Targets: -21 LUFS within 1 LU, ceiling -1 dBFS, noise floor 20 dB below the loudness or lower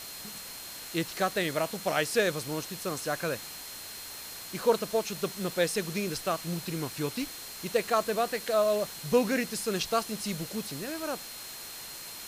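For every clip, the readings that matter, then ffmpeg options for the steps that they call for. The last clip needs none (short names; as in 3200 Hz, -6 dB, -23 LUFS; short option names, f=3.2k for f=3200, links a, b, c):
steady tone 4200 Hz; tone level -47 dBFS; noise floor -43 dBFS; noise floor target -51 dBFS; loudness -31.0 LUFS; peak -12.0 dBFS; loudness target -21.0 LUFS
-> -af "bandreject=f=4.2k:w=30"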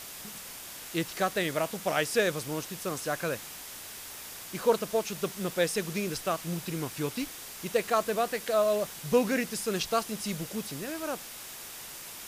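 steady tone none; noise floor -44 dBFS; noise floor target -52 dBFS
-> -af "afftdn=nr=8:nf=-44"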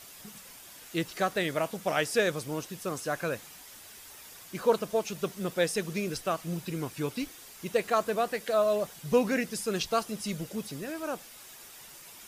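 noise floor -50 dBFS; noise floor target -51 dBFS
-> -af "afftdn=nr=6:nf=-50"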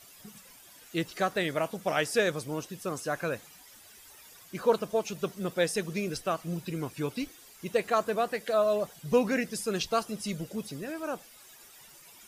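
noise floor -54 dBFS; loudness -31.0 LUFS; peak -12.0 dBFS; loudness target -21.0 LUFS
-> -af "volume=10dB"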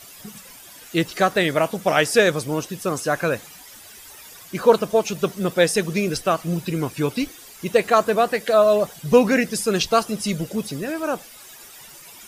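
loudness -21.0 LUFS; peak -2.0 dBFS; noise floor -44 dBFS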